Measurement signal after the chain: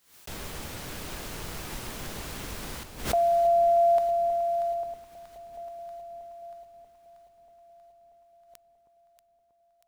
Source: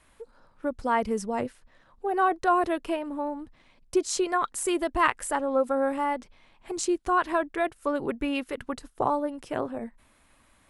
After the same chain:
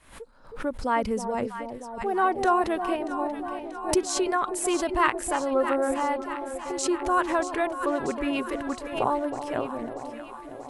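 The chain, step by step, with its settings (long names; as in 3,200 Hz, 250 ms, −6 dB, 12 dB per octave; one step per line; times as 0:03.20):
delay that swaps between a low-pass and a high-pass 318 ms, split 890 Hz, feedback 79%, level −8 dB
background raised ahead of every attack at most 110 dB per second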